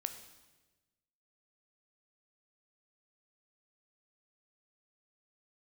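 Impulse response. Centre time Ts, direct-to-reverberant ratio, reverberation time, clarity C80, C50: 14 ms, 7.5 dB, 1.2 s, 11.5 dB, 10.0 dB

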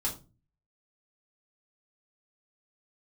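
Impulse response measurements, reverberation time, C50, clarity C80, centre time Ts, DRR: 0.30 s, 11.5 dB, 17.0 dB, 18 ms, -5.0 dB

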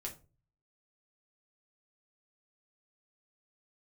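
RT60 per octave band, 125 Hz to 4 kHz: 0.75 s, 0.45 s, 0.40 s, 0.30 s, 0.25 s, 0.20 s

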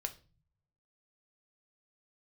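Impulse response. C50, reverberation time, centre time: 15.5 dB, 0.35 s, 6 ms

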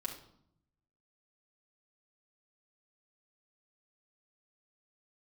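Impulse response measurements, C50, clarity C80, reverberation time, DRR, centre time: 7.5 dB, 12.0 dB, 0.70 s, -2.5 dB, 20 ms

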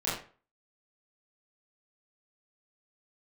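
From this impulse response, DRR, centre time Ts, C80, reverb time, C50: -9.5 dB, 47 ms, 7.5 dB, 0.40 s, 3.5 dB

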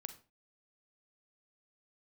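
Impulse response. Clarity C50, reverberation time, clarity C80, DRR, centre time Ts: 12.0 dB, 0.35 s, 17.0 dB, 9.5 dB, 7 ms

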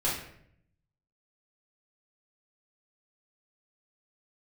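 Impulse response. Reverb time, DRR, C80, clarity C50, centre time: 0.70 s, -8.0 dB, 7.0 dB, 3.0 dB, 46 ms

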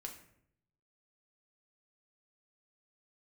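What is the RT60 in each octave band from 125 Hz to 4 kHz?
1.1 s, 0.90 s, 0.75 s, 0.60 s, 0.60 s, 0.45 s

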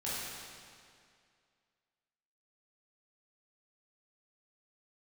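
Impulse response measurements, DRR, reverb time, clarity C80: -10.0 dB, 2.2 s, -1.5 dB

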